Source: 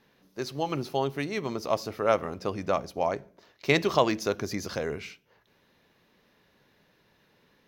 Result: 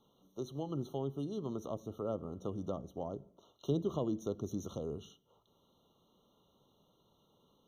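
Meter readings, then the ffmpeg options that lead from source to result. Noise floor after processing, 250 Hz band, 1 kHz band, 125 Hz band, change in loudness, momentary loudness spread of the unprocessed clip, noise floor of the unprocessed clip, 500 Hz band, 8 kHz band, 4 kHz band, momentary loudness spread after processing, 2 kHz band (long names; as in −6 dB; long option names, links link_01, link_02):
−73 dBFS, −6.0 dB, −18.0 dB, −4.5 dB, −10.5 dB, 12 LU, −66 dBFS, −11.0 dB, −13.5 dB, −19.0 dB, 9 LU, below −40 dB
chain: -filter_complex "[0:a]acrossover=split=410[link_01][link_02];[link_02]acompressor=threshold=-43dB:ratio=4[link_03];[link_01][link_03]amix=inputs=2:normalize=0,afftfilt=real='re*eq(mod(floor(b*sr/1024/1400),2),0)':imag='im*eq(mod(floor(b*sr/1024/1400),2),0)':win_size=1024:overlap=0.75,volume=-4.5dB"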